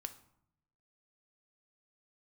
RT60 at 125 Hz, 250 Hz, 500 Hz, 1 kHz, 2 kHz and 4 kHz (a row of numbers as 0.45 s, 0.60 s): 1.1 s, 0.95 s, 0.70 s, 0.70 s, 0.55 s, 0.45 s